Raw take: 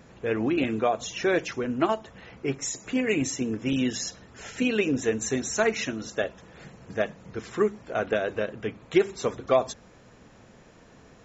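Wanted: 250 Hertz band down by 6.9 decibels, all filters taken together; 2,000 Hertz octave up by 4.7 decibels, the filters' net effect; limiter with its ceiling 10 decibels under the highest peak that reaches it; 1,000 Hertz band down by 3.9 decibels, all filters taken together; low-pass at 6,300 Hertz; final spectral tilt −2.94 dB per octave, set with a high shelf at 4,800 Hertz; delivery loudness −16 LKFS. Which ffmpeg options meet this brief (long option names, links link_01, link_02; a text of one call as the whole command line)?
ffmpeg -i in.wav -af "lowpass=6300,equalizer=frequency=250:width_type=o:gain=-8.5,equalizer=frequency=1000:width_type=o:gain=-7.5,equalizer=frequency=2000:width_type=o:gain=7.5,highshelf=frequency=4800:gain=4.5,volume=15.5dB,alimiter=limit=-3.5dB:level=0:latency=1" out.wav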